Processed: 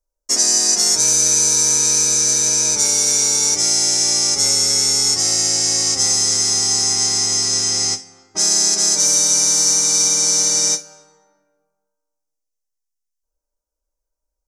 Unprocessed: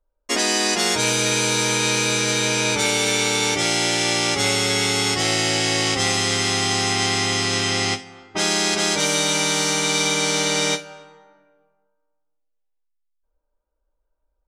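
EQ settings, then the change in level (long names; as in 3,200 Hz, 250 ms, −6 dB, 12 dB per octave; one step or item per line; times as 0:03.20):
high shelf with overshoot 4,300 Hz +11.5 dB, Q 3
−7.0 dB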